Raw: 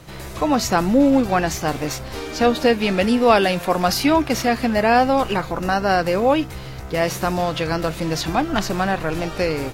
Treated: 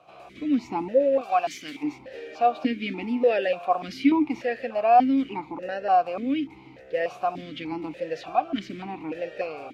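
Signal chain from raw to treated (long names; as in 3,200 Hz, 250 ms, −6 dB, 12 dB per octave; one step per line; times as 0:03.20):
0:01.21–0:01.83: spectral tilt +3.5 dB per octave
formant filter that steps through the vowels 3.4 Hz
level +2 dB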